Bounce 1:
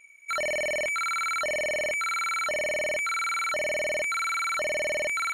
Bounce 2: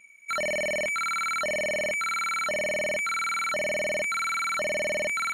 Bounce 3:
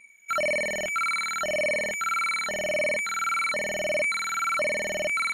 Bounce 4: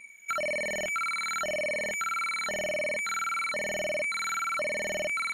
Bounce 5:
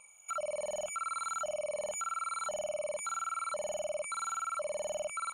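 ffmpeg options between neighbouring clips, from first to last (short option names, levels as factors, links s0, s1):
-af "equalizer=f=200:t=o:w=0.54:g=13.5"
-af "afftfilt=real='re*pow(10,8/40*sin(2*PI*(0.97*log(max(b,1)*sr/1024/100)/log(2)-(-1.7)*(pts-256)/sr)))':imag='im*pow(10,8/40*sin(2*PI*(0.97*log(max(b,1)*sr/1024/100)/log(2)-(-1.7)*(pts-256)/sr)))':win_size=1024:overlap=0.75"
-af "acompressor=threshold=0.0178:ratio=4,volume=1.58"
-af "firequalizer=gain_entry='entry(100,0);entry(190,-6);entry(270,-18);entry(560,8);entry(1300,8);entry(1900,-26);entry(2700,2);entry(4400,-8);entry(8300,10);entry(12000,-6)':delay=0.05:min_phase=1,alimiter=level_in=1.68:limit=0.0631:level=0:latency=1:release=40,volume=0.596,volume=0.794"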